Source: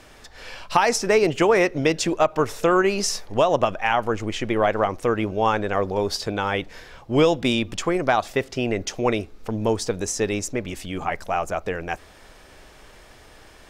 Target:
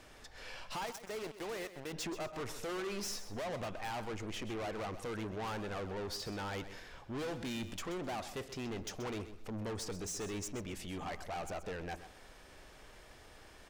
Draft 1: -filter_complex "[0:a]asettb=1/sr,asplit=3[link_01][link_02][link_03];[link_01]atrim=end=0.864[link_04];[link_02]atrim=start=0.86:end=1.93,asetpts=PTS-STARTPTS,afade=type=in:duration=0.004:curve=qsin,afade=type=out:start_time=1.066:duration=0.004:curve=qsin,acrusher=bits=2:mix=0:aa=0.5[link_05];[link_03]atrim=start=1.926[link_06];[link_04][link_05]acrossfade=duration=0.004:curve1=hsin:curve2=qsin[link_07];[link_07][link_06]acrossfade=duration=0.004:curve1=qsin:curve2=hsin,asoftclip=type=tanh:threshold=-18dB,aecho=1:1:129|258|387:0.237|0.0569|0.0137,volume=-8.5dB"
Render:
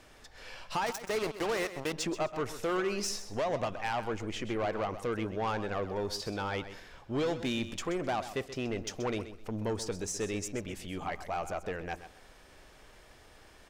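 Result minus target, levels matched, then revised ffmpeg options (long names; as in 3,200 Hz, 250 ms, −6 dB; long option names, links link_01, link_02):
soft clipping: distortion −7 dB
-filter_complex "[0:a]asettb=1/sr,asplit=3[link_01][link_02][link_03];[link_01]atrim=end=0.864[link_04];[link_02]atrim=start=0.86:end=1.93,asetpts=PTS-STARTPTS,afade=type=in:duration=0.004:curve=qsin,afade=type=out:start_time=1.066:duration=0.004:curve=qsin,acrusher=bits=2:mix=0:aa=0.5[link_05];[link_03]atrim=start=1.926[link_06];[link_04][link_05]acrossfade=duration=0.004:curve1=hsin:curve2=qsin[link_07];[link_07][link_06]acrossfade=duration=0.004:curve1=qsin:curve2=hsin,asoftclip=type=tanh:threshold=-29dB,aecho=1:1:129|258|387:0.237|0.0569|0.0137,volume=-8.5dB"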